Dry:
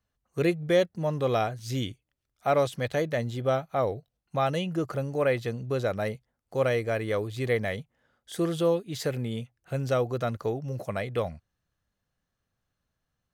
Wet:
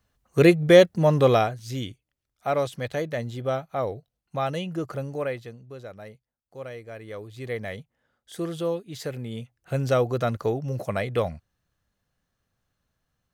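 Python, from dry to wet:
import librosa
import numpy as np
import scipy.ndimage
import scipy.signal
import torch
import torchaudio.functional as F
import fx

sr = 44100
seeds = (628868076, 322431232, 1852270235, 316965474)

y = fx.gain(x, sr, db=fx.line((1.24, 9.0), (1.64, -1.0), (5.12, -1.0), (5.64, -12.5), (6.84, -12.5), (7.73, -3.0), (9.24, -3.0), (9.74, 4.0)))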